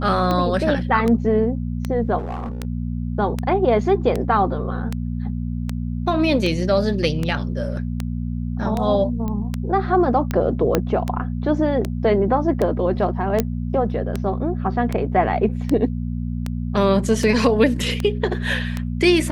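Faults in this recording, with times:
mains hum 60 Hz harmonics 4 −25 dBFS
scratch tick 78 rpm −10 dBFS
0:02.18–0:02.65: clipping −24 dBFS
0:09.28: click −16 dBFS
0:10.75: click −3 dBFS
0:13.40: click −5 dBFS

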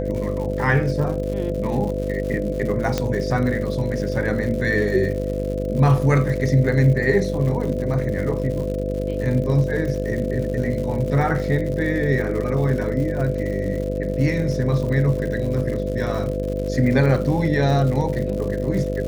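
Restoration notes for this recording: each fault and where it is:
mains buzz 50 Hz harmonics 13 −26 dBFS
surface crackle 140 per second −29 dBFS
whistle 510 Hz −26 dBFS
0:02.98: click −7 dBFS

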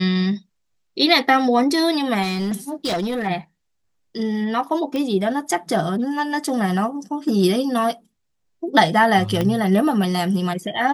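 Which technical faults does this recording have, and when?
0:02.22–0:03.28: clipping −19 dBFS
0:04.96: click −14 dBFS
0:09.41: click −9 dBFS

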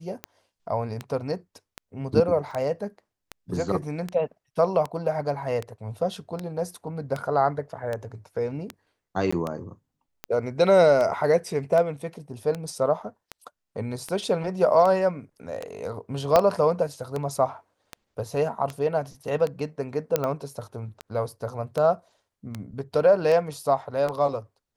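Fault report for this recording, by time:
scratch tick 78 rpm −16 dBFS
0:02.51: drop-out 2.8 ms
0:09.31–0:09.32: drop-out 15 ms
0:16.36: click −5 dBFS
0:20.16: click −7 dBFS

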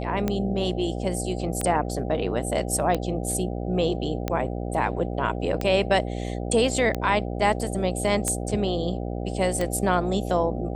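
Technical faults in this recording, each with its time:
mains buzz 60 Hz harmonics 13 −30 dBFS
scratch tick 45 rpm −12 dBFS

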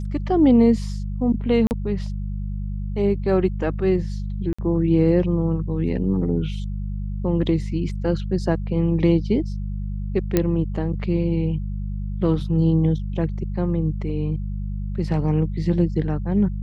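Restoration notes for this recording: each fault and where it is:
mains hum 50 Hz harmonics 4 −27 dBFS
0:01.67–0:01.71: drop-out 39 ms
0:04.53–0:04.58: drop-out 55 ms
0:10.37: click −5 dBFS

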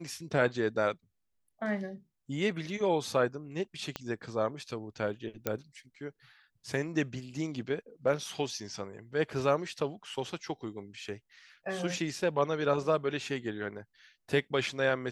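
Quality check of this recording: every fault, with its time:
0:03.96: click −19 dBFS
0:05.47: click −15 dBFS

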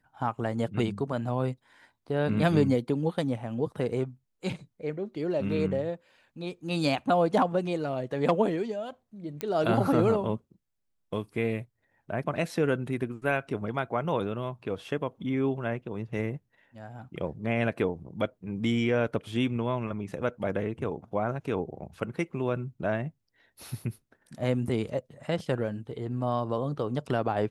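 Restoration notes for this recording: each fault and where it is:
0:09.41: click −16 dBFS

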